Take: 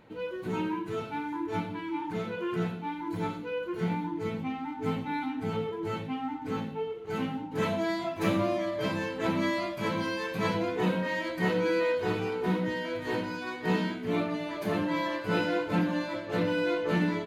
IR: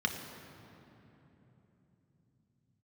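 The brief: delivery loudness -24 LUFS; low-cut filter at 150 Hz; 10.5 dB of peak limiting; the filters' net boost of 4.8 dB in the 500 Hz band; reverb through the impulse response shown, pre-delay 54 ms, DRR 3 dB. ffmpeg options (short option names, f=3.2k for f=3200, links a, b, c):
-filter_complex "[0:a]highpass=150,equalizer=f=500:t=o:g=5.5,alimiter=limit=-24dB:level=0:latency=1,asplit=2[a][b];[1:a]atrim=start_sample=2205,adelay=54[c];[b][c]afir=irnorm=-1:irlink=0,volume=-10dB[d];[a][d]amix=inputs=2:normalize=0,volume=6.5dB"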